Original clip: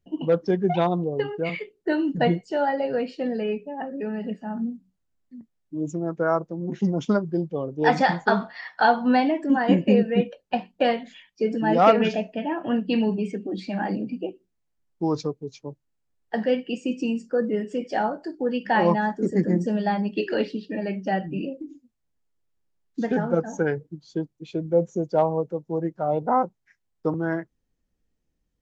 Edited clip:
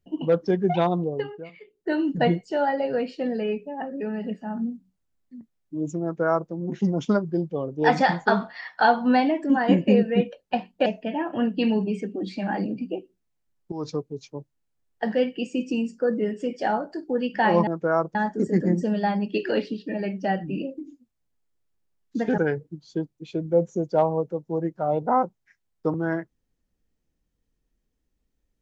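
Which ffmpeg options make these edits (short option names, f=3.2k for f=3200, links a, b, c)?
-filter_complex "[0:a]asplit=8[a][b][c][d][e][f][g][h];[a]atrim=end=1.52,asetpts=PTS-STARTPTS,afade=t=out:st=1.06:d=0.46:silence=0.0841395[i];[b]atrim=start=1.52:end=1.54,asetpts=PTS-STARTPTS,volume=-21.5dB[j];[c]atrim=start=1.54:end=10.862,asetpts=PTS-STARTPTS,afade=t=in:d=0.46:silence=0.0841395[k];[d]atrim=start=12.168:end=15.03,asetpts=PTS-STARTPTS,afade=t=out:st=2.858:d=0.004:c=hsin:silence=0.177828[l];[e]atrim=start=15.03:end=18.982,asetpts=PTS-STARTPTS,afade=t=in:d=0.27:silence=0.177828[m];[f]atrim=start=6.028:end=6.512[n];[g]atrim=start=18.978:end=23.212[o];[h]atrim=start=23.578[p];[i][j][k]concat=n=3:v=0:a=1[q];[l][m]concat=n=2:v=0:a=1[r];[q][r]acrossfade=d=0.004:c1=hsin:c2=hsin[s];[s][n]acrossfade=d=0.004:c1=hsin:c2=hsin[t];[t][o]acrossfade=d=0.004:c1=hsin:c2=hsin[u];[u][p]acrossfade=d=0.004:c1=hsin:c2=hsin"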